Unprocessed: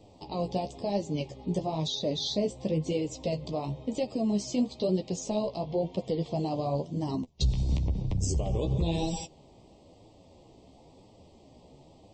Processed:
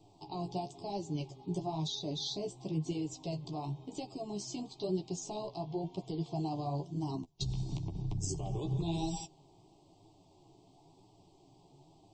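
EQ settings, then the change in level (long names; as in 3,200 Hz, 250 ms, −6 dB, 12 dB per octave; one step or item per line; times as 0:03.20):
phaser with its sweep stopped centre 340 Hz, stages 8
notch filter 620 Hz, Q 12
−3.5 dB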